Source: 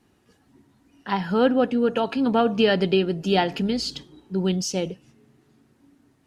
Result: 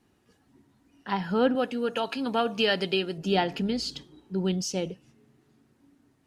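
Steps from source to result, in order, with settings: 1.55–3.18 s: tilt EQ +2.5 dB/octave; trim -4 dB

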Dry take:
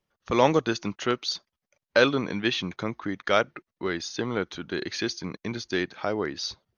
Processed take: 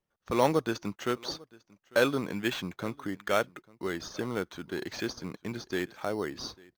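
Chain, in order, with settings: in parallel at -5 dB: sample-and-hold 9×; on the sum: delay 848 ms -24 dB; trim -8 dB

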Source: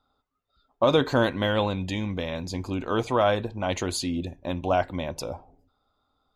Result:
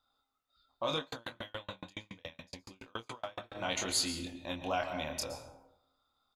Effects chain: plate-style reverb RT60 0.83 s, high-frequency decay 0.55×, pre-delay 105 ms, DRR 8.5 dB; peak limiter -15 dBFS, peak gain reduction 7 dB; tilt shelf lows -6.5 dB, about 1.1 kHz; band-stop 410 Hz, Q 12; doubling 26 ms -4 dB; 0.98–3.55 s: sawtooth tremolo in dB decaying 7.1 Hz, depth 40 dB; trim -7.5 dB

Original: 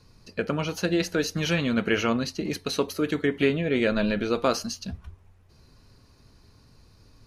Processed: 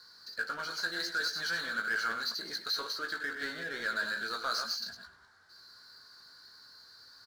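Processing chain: chunks repeated in reverse 101 ms, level -7 dB; two resonant band-passes 2.6 kHz, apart 1.5 oct; doubling 18 ms -7.5 dB; speakerphone echo 100 ms, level -15 dB; power-law waveshaper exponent 0.7

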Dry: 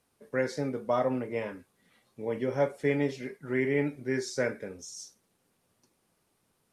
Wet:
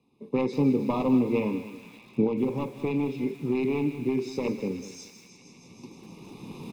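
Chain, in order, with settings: one-sided wavefolder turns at -24 dBFS; recorder AGC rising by 13 dB/s; Butterworth band-stop 1.5 kHz, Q 1.2; bass shelf 390 Hz +10.5 dB; 2.26–4.45 s: compression 2.5:1, threshold -27 dBFS, peak gain reduction 7 dB; three-band isolator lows -20 dB, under 160 Hz, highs -20 dB, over 3.9 kHz; comb 0.8 ms, depth 73%; feedback echo behind a high-pass 157 ms, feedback 84%, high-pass 2.2 kHz, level -10.5 dB; bit-crushed delay 197 ms, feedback 35%, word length 8-bit, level -13 dB; trim +2 dB

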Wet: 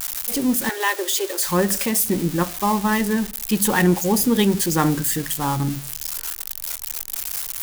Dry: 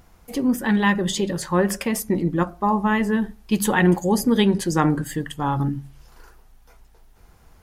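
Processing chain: zero-crossing glitches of -16.5 dBFS; 0.69–1.47 s: steep high-pass 340 Hz 72 dB/octave

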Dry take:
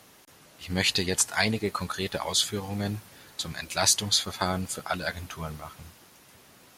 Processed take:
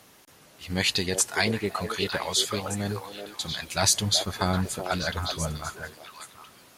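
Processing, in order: 3.73–5.76 s: bass shelf 210 Hz +8 dB; repeats whose band climbs or falls 380 ms, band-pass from 480 Hz, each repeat 1.4 oct, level -2 dB

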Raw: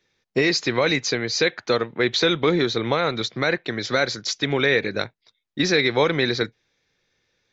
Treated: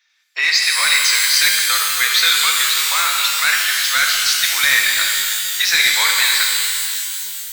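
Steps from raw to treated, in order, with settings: high-pass 1.2 kHz 24 dB/octave; in parallel at -3 dB: wavefolder -17 dBFS; on the sum: pitch-shifted reverb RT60 2.5 s, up +12 st, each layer -2 dB, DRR 0 dB; trim +2.5 dB

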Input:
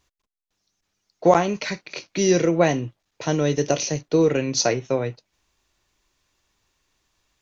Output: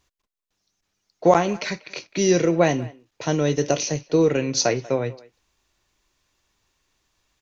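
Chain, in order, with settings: speakerphone echo 190 ms, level -20 dB

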